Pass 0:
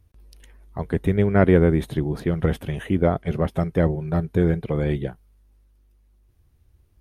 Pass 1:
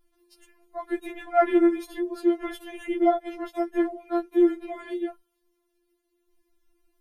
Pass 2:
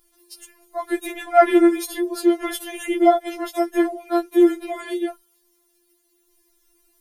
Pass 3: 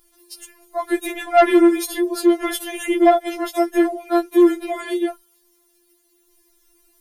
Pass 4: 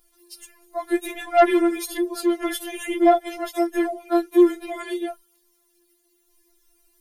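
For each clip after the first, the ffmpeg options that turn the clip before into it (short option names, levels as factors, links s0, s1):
-af "afftfilt=real='re*4*eq(mod(b,16),0)':imag='im*4*eq(mod(b,16),0)':win_size=2048:overlap=0.75"
-af "bass=f=250:g=-9,treble=f=4000:g=12,volume=2.24"
-af "asoftclip=type=tanh:threshold=0.376,volume=1.5"
-af "flanger=delay=4.1:depth=5.3:regen=43:speed=0.59:shape=triangular"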